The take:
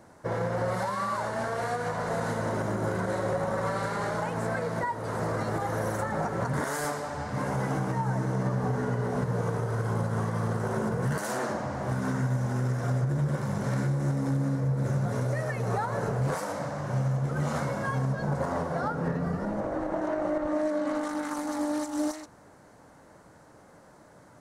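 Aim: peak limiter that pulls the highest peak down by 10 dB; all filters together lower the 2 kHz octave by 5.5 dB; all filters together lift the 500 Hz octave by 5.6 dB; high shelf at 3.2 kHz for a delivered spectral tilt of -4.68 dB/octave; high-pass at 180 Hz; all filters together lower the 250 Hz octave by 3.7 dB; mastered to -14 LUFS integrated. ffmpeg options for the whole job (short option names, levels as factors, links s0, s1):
-af "highpass=180,equalizer=f=250:t=o:g=-5.5,equalizer=f=500:t=o:g=8.5,equalizer=f=2000:t=o:g=-6.5,highshelf=f=3200:g=-7,volume=8.91,alimiter=limit=0.531:level=0:latency=1"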